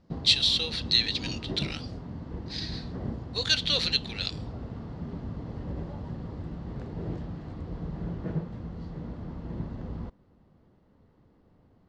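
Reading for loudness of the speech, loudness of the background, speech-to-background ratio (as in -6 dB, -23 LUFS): -26.0 LUFS, -38.0 LUFS, 12.0 dB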